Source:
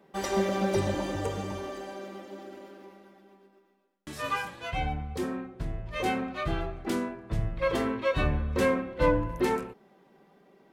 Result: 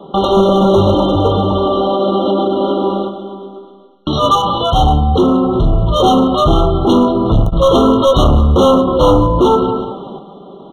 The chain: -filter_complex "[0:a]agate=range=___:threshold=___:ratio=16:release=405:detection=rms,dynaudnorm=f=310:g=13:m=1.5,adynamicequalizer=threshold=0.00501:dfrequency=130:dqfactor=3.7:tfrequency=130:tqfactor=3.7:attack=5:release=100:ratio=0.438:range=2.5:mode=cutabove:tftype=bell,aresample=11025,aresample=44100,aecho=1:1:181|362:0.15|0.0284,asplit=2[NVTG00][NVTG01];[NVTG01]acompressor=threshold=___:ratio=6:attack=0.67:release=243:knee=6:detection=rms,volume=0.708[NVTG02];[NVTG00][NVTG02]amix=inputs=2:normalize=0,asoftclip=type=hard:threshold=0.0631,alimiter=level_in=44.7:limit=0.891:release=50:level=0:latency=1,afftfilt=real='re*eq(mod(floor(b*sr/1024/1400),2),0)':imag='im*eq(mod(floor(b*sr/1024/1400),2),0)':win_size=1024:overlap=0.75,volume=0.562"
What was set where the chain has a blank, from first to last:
0.447, 0.00355, 0.0126